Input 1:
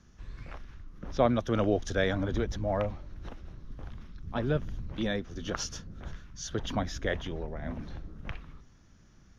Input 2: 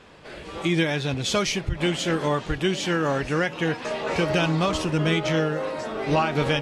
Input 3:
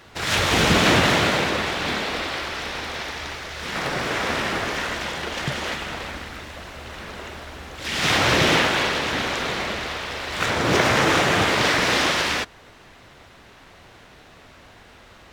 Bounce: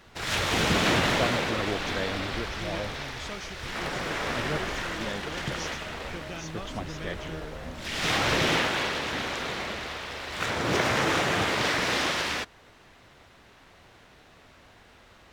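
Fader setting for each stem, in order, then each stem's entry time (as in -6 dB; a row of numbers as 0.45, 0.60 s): -5.0, -17.0, -6.5 dB; 0.00, 1.95, 0.00 s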